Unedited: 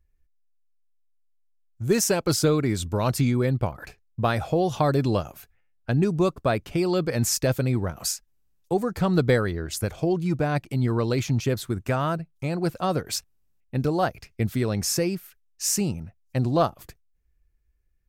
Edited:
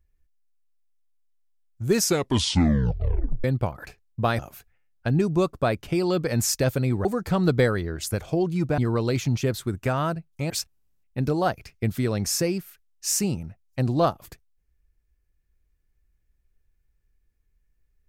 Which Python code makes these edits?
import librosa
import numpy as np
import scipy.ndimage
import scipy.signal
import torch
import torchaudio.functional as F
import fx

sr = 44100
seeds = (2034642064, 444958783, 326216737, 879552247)

y = fx.edit(x, sr, fx.tape_stop(start_s=1.95, length_s=1.49),
    fx.cut(start_s=4.39, length_s=0.83),
    fx.cut(start_s=7.88, length_s=0.87),
    fx.cut(start_s=10.48, length_s=0.33),
    fx.cut(start_s=12.53, length_s=0.54), tone=tone)